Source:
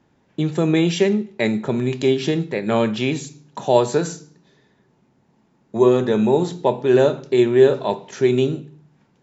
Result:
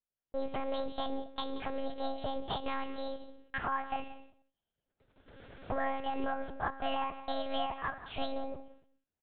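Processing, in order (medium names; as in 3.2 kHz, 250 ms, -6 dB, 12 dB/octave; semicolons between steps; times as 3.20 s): recorder AGC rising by 14 dB/s; gate -42 dBFS, range -31 dB; tilt shelf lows -5 dB, about 1.2 kHz; compression 3:1, threshold -23 dBFS, peak gain reduction 9 dB; pitch shift +10 st; delay 180 ms -15 dB; monotone LPC vocoder at 8 kHz 270 Hz; trim -8.5 dB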